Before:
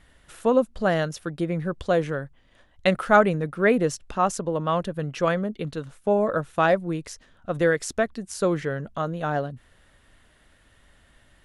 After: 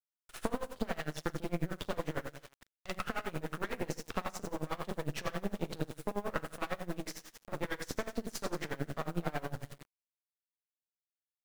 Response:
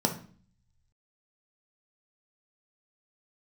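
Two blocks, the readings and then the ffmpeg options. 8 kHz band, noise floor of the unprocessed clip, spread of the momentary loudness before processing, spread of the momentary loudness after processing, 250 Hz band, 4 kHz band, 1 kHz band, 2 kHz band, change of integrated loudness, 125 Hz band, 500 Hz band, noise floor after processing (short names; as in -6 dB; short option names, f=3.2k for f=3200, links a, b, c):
-10.0 dB, -59 dBFS, 10 LU, 7 LU, -13.0 dB, -8.0 dB, -15.0 dB, -14.0 dB, -15.0 dB, -11.5 dB, -17.0 dB, under -85 dBFS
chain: -filter_complex "[0:a]acrossover=split=740[a][b];[a]alimiter=limit=-21dB:level=0:latency=1:release=114[c];[c][b]amix=inputs=2:normalize=0,acrossover=split=88|2500|6400[d][e][f][g];[d]acompressor=threshold=-55dB:ratio=4[h];[e]acompressor=threshold=-26dB:ratio=4[i];[f]acompressor=threshold=-42dB:ratio=4[j];[g]acompressor=threshold=-55dB:ratio=4[k];[h][i][j][k]amix=inputs=4:normalize=0,flanger=delay=8.3:depth=5.6:regen=-37:speed=0.41:shape=sinusoidal,agate=range=-29dB:threshold=-56dB:ratio=16:detection=peak,acompressor=threshold=-40dB:ratio=12,aecho=1:1:40|88|145.6|214.7|297.7:0.631|0.398|0.251|0.158|0.1,acrusher=bits=7:dc=4:mix=0:aa=0.000001,aeval=exprs='max(val(0),0)':c=same,aeval=exprs='val(0)*pow(10,-22*(0.5-0.5*cos(2*PI*11*n/s))/20)':c=same,volume=13.5dB"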